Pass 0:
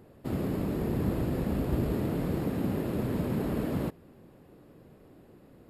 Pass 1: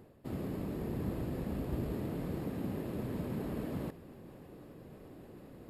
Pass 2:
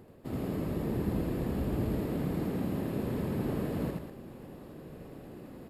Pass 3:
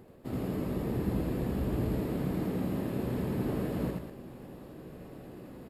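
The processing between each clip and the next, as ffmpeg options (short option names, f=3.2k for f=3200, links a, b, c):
-af "bandreject=f=1.4k:w=23,areverse,acompressor=mode=upward:threshold=-33dB:ratio=2.5,areverse,volume=-7.5dB"
-af "aecho=1:1:81.63|195.3:0.794|0.398,volume=2.5dB"
-filter_complex "[0:a]asplit=2[a][b];[b]adelay=16,volume=-11dB[c];[a][c]amix=inputs=2:normalize=0"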